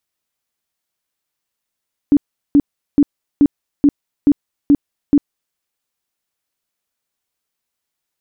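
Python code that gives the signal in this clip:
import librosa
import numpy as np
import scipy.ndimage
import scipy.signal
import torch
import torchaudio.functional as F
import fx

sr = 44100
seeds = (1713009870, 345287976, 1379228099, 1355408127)

y = fx.tone_burst(sr, hz=287.0, cycles=14, every_s=0.43, bursts=8, level_db=-6.0)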